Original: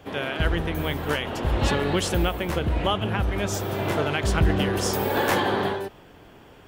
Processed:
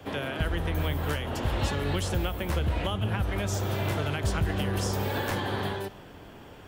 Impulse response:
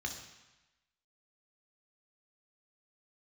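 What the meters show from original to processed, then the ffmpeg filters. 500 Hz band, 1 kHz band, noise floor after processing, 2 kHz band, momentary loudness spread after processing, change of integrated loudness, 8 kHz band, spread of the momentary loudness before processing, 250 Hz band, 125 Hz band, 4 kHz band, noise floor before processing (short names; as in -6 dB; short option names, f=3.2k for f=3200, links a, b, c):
-7.0 dB, -6.5 dB, -47 dBFS, -6.0 dB, 5 LU, -5.0 dB, -5.5 dB, 5 LU, -5.5 dB, -1.5 dB, -5.5 dB, -49 dBFS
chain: -filter_complex "[0:a]acrossover=split=130|420|1600|7900[a][b][c][d][e];[a]acompressor=threshold=-29dB:ratio=4[f];[b]acompressor=threshold=-40dB:ratio=4[g];[c]acompressor=threshold=-37dB:ratio=4[h];[d]acompressor=threshold=-39dB:ratio=4[i];[e]acompressor=threshold=-47dB:ratio=4[j];[f][g][h][i][j]amix=inputs=5:normalize=0,asplit=2[k][l];[1:a]atrim=start_sample=2205[m];[l][m]afir=irnorm=-1:irlink=0,volume=-15dB[n];[k][n]amix=inputs=2:normalize=0,volume=2.5dB"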